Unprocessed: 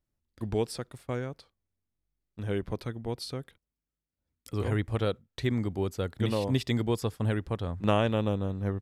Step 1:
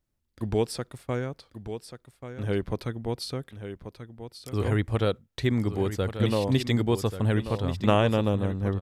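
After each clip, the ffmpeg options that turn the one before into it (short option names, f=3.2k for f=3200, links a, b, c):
-af "aecho=1:1:1136:0.299,volume=3.5dB"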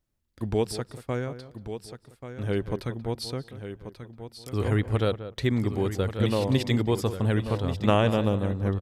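-filter_complex "[0:a]asplit=2[a][b];[b]adelay=184,lowpass=f=1.7k:p=1,volume=-12.5dB,asplit=2[c][d];[d]adelay=184,lowpass=f=1.7k:p=1,volume=0.17[e];[a][c][e]amix=inputs=3:normalize=0"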